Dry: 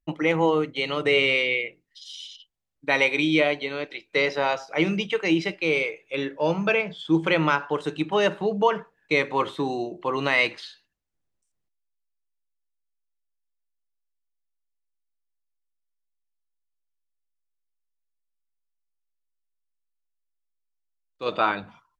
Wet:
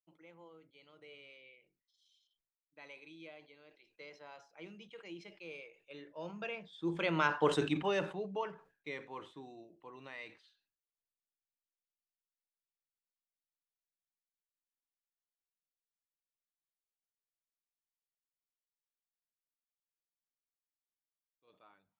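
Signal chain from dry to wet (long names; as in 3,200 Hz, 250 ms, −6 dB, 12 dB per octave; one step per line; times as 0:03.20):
source passing by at 0:07.50, 13 m/s, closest 2.1 metres
level that may fall only so fast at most 140 dB per second
level −3 dB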